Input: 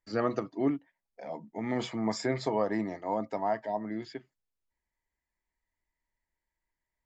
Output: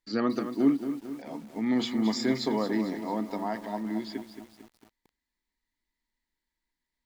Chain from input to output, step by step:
graphic EQ with 15 bands 100 Hz −10 dB, 250 Hz +9 dB, 630 Hz −6 dB, 4,000 Hz +10 dB
feedback echo at a low word length 224 ms, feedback 55%, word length 8 bits, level −9.5 dB

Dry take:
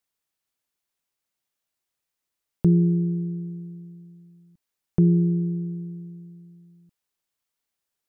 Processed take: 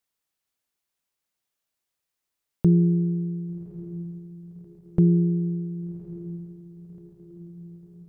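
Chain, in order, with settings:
feedback delay with all-pass diffusion 1,150 ms, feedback 53%, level −15 dB
every ending faded ahead of time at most 150 dB per second

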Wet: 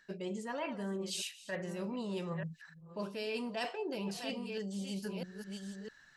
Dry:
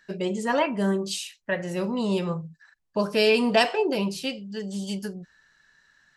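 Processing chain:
delay that plays each chunk backwards 654 ms, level −13 dB
reversed playback
downward compressor 6 to 1, threshold −37 dBFS, peak gain reduction 20.5 dB
reversed playback

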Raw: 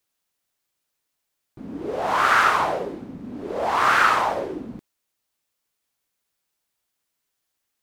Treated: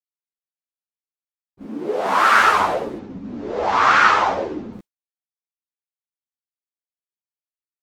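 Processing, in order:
0:02.98–0:04.73: Butterworth low-pass 7,000 Hz 36 dB per octave
downward expander −35 dBFS
0:01.64–0:02.40: high-pass filter 160 Hz 24 dB per octave
string-ensemble chorus
level +6.5 dB

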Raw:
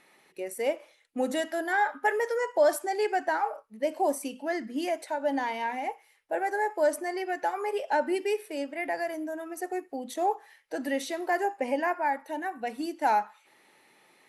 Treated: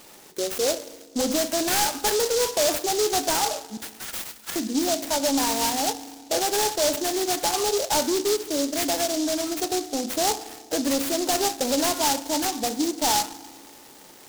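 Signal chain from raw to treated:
in parallel at −1 dB: downward compressor, threshold −39 dBFS, peak gain reduction 19.5 dB
on the sum: soft clipping −26.5 dBFS, distortion −9 dB
0:03.77–0:04.56: linear-phase brick-wall high-pass 1,300 Hz
feedback delay network reverb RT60 1.6 s, low-frequency decay 1.5×, high-frequency decay 0.9×, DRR 13.5 dB
short delay modulated by noise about 5,300 Hz, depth 0.15 ms
level +7.5 dB

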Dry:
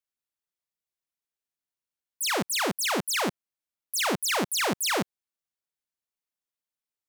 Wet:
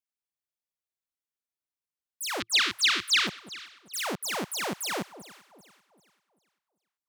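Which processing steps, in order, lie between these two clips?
0:02.40–0:03.27: drawn EQ curve 110 Hz 0 dB, 160 Hz −15 dB, 340 Hz −1 dB, 530 Hz −20 dB, 790 Hz −21 dB, 1,200 Hz +6 dB, 2,300 Hz +11 dB, 3,800 Hz +15 dB, 12,000 Hz −8 dB
on a send: delay that swaps between a low-pass and a high-pass 195 ms, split 1,000 Hz, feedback 59%, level −13.5 dB
on the sum: level −5.5 dB

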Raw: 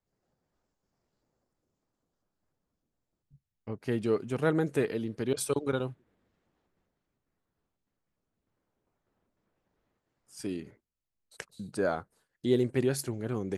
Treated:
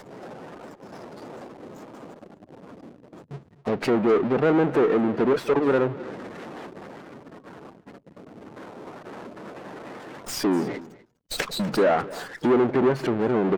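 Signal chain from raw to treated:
gate on every frequency bin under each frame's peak −20 dB strong
power curve on the samples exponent 0.5
in parallel at −1.5 dB: downward compressor, threshold −34 dBFS, peak gain reduction 14.5 dB
on the sum: soft clipping −18.5 dBFS, distortion −17 dB
treble cut that deepens with the level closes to 1,900 Hz, closed at −22 dBFS
high-pass filter 220 Hz 12 dB per octave
on a send: single-tap delay 249 ms −19 dB
on the sum: windowed peak hold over 3 samples
level +5 dB

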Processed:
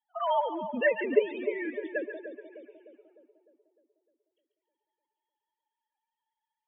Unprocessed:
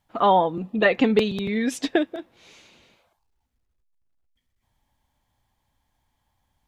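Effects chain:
three sine waves on the formant tracks
spectral peaks only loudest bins 32
echo with a time of its own for lows and highs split 890 Hz, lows 303 ms, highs 141 ms, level −9 dB
level −8.5 dB

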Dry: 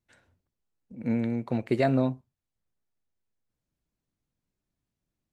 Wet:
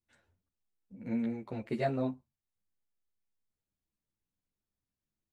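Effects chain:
string-ensemble chorus
level −4.5 dB

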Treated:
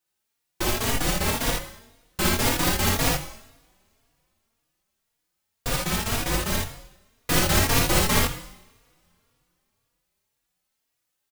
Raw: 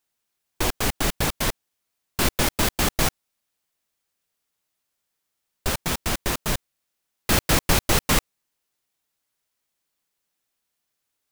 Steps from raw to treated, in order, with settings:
ambience of single reflections 57 ms −3 dB, 79 ms −4 dB
coupled-rooms reverb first 0.82 s, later 3.4 s, from −28 dB, DRR 8 dB
barber-pole flanger 3.6 ms +1.9 Hz

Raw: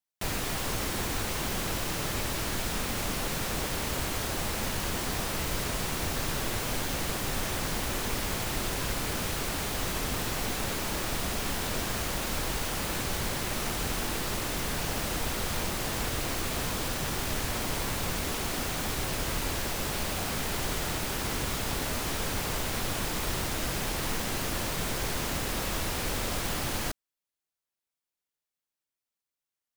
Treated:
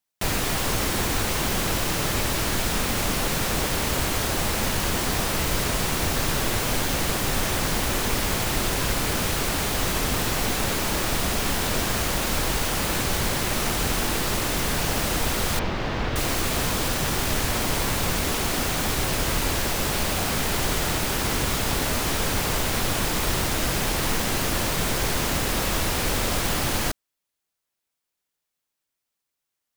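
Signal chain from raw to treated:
0:15.59–0:16.16: high-frequency loss of the air 230 metres
level +7 dB

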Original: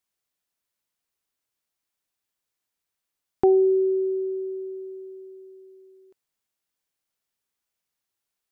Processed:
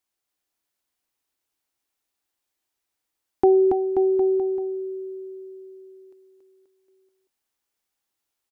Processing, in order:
thirty-one-band graphic EQ 160 Hz −10 dB, 315 Hz +5 dB, 800 Hz +4 dB
bouncing-ball delay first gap 280 ms, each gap 0.9×, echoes 5

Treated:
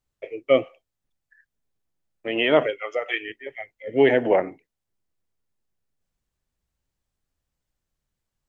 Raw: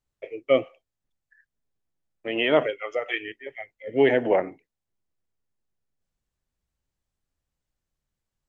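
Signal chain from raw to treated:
0:02.79–0:03.30: low-shelf EQ 160 Hz −10.5 dB
level +2 dB

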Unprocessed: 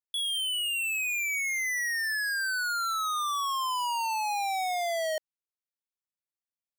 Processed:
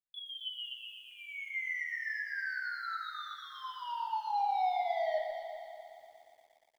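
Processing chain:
0:02.16–0:02.86: high-shelf EQ 3,600 Hz +4.5 dB
0:03.77–0:04.38: comb filter 1 ms, depth 41%
brickwall limiter −30.5 dBFS, peak gain reduction 6 dB
fake sidechain pumping 81 BPM, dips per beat 2, −22 dB, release 87 ms
high-frequency loss of the air 340 metres
phaser with its sweep stopped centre 1,700 Hz, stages 8
tuned comb filter 510 Hz, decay 0.16 s, harmonics all, mix 50%
delay that swaps between a low-pass and a high-pass 125 ms, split 2,100 Hz, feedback 61%, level −4 dB
convolution reverb RT60 0.40 s, pre-delay 5 ms, DRR 1.5 dB
feedback echo at a low word length 118 ms, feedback 80%, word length 11 bits, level −11.5 dB
level +1.5 dB

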